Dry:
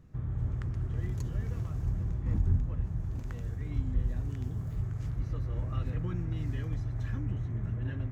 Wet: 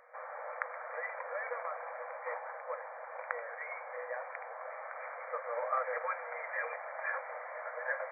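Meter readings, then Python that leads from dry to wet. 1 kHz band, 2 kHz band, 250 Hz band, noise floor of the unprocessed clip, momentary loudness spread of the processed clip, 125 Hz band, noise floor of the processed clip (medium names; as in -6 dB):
+15.5 dB, +15.5 dB, under -40 dB, -39 dBFS, 8 LU, under -40 dB, -46 dBFS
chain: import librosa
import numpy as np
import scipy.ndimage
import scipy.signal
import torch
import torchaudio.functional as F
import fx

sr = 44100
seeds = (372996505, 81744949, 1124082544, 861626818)

y = fx.brickwall_bandpass(x, sr, low_hz=480.0, high_hz=2400.0)
y = y * librosa.db_to_amplitude(15.5)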